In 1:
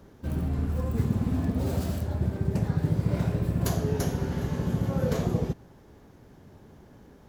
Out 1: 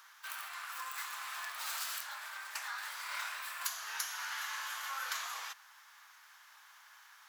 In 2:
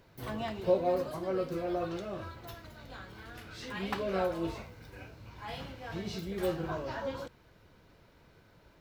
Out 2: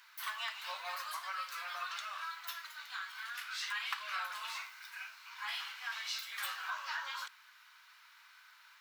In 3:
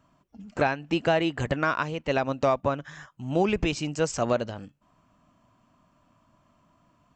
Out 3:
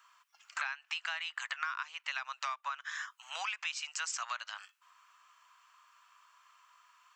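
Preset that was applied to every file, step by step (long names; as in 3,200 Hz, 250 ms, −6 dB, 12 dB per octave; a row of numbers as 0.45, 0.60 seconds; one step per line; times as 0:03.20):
Butterworth high-pass 1,100 Hz 36 dB per octave
downward compressor 6 to 1, threshold −43 dBFS
level +8 dB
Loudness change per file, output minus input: −11.0, −5.0, −11.5 LU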